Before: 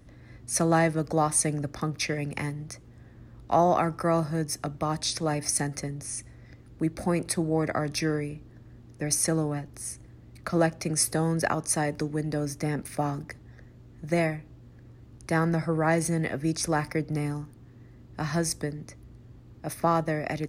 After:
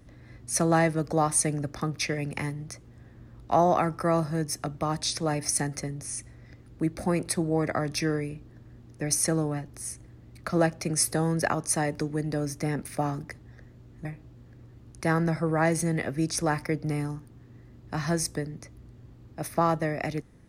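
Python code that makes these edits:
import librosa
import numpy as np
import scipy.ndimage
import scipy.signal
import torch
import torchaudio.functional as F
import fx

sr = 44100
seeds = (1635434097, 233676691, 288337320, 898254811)

y = fx.edit(x, sr, fx.cut(start_s=14.05, length_s=0.26), tone=tone)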